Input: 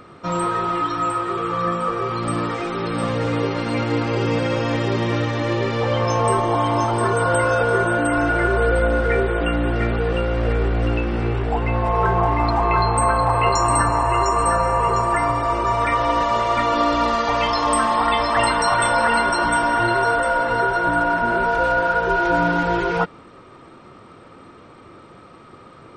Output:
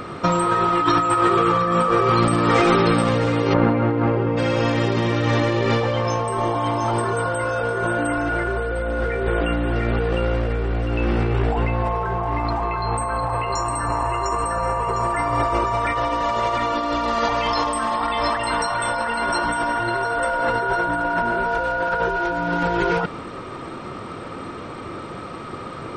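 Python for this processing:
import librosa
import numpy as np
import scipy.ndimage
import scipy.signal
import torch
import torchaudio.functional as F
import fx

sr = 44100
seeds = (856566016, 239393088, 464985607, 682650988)

y = fx.lowpass(x, sr, hz=1400.0, slope=12, at=(3.53, 4.36), fade=0.02)
y = fx.over_compress(y, sr, threshold_db=-26.0, ratio=-1.0)
y = y * librosa.db_to_amplitude(5.0)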